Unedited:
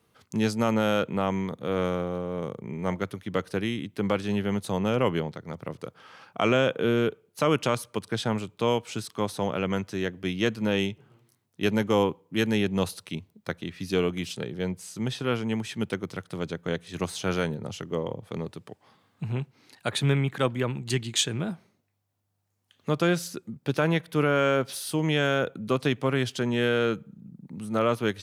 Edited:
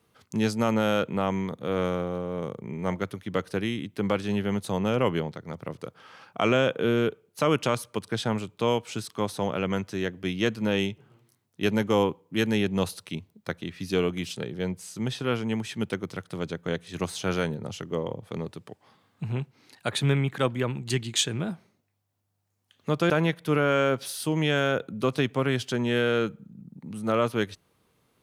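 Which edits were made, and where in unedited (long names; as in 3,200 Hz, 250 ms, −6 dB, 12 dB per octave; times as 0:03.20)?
0:23.10–0:23.77: remove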